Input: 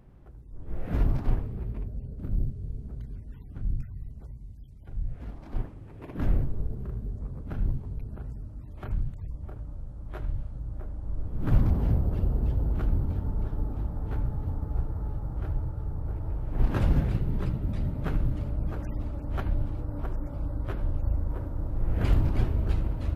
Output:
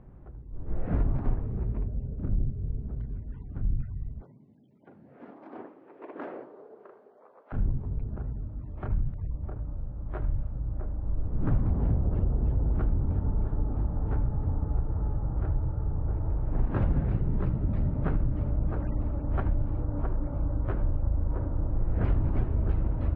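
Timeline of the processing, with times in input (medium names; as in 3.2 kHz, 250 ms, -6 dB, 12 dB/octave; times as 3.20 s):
4.21–7.52 s: high-pass 170 Hz -> 590 Hz 24 dB/octave
whole clip: low-pass 1.6 kHz 12 dB/octave; compression 4:1, threshold -25 dBFS; trim +3.5 dB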